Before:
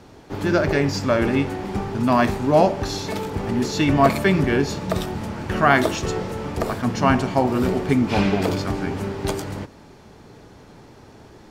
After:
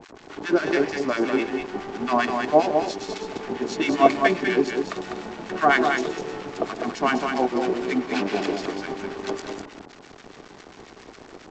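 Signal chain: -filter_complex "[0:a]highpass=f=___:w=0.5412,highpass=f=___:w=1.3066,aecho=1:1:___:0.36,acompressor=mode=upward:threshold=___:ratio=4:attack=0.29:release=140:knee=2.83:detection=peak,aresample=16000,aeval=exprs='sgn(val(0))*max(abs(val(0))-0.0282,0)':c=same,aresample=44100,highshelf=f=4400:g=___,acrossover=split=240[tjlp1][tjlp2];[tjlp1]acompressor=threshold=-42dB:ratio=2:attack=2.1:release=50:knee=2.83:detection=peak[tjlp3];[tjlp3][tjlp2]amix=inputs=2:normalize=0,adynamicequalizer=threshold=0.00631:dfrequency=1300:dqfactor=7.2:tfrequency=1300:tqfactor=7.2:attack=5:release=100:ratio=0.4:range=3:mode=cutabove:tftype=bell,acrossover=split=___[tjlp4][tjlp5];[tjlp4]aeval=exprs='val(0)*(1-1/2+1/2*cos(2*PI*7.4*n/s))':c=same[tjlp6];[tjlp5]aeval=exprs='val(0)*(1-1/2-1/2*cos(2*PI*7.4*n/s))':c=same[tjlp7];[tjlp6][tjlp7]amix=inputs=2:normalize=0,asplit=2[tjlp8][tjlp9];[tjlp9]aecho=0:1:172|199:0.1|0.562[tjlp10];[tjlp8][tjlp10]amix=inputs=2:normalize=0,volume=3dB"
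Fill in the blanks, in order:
180, 180, 2.7, -21dB, -4, 1100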